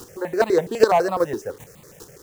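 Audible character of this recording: a quantiser's noise floor 8-bit, dither none; chopped level 2.5 Hz, depth 60%, duty 10%; notches that jump at a steady rate 12 Hz 580–1600 Hz

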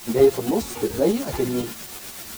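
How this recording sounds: a quantiser's noise floor 6-bit, dither triangular; tremolo saw up 8.1 Hz, depth 50%; a shimmering, thickened sound

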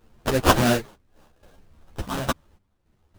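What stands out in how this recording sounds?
phasing stages 2, 3.2 Hz, lowest notch 560–1700 Hz; aliases and images of a low sample rate 2.2 kHz, jitter 20%; random-step tremolo 3.5 Hz, depth 85%; a shimmering, thickened sound

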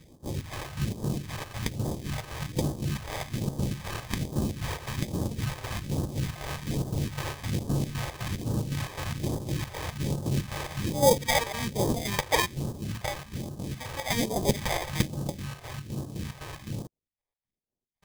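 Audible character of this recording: aliases and images of a low sample rate 1.4 kHz, jitter 0%; chopped level 3.9 Hz, depth 60%, duty 60%; phasing stages 2, 1.2 Hz, lowest notch 200–2100 Hz

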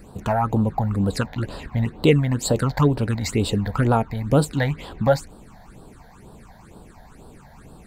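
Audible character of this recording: phasing stages 8, 2.1 Hz, lowest notch 340–2100 Hz

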